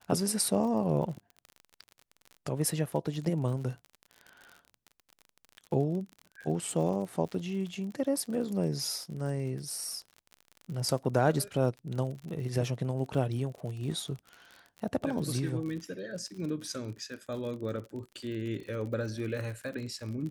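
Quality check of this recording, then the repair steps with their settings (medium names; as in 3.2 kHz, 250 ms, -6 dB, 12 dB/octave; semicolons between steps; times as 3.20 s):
crackle 43 per s -38 dBFS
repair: de-click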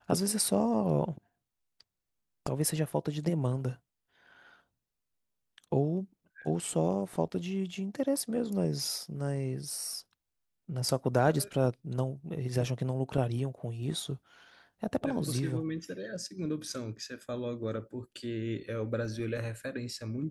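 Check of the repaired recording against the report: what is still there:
nothing left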